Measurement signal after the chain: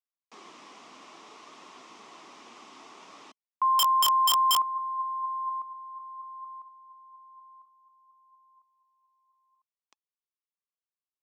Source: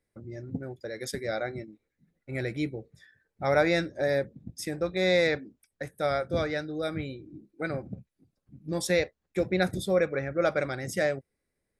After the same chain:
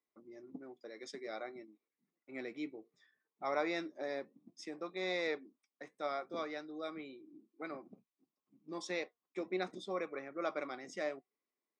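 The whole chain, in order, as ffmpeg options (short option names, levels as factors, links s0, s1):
-af "flanger=delay=0.9:depth=3.4:regen=85:speed=0.6:shape=triangular,highpass=f=250:w=0.5412,highpass=f=250:w=1.3066,equalizer=f=530:t=q:w=4:g=-7,equalizer=f=1100:t=q:w=4:g=10,equalizer=f=1600:t=q:w=4:g=-9,equalizer=f=4300:t=q:w=4:g=-5,lowpass=f=6200:w=0.5412,lowpass=f=6200:w=1.3066,aeval=exprs='(mod(5.01*val(0)+1,2)-1)/5.01':c=same,volume=0.596"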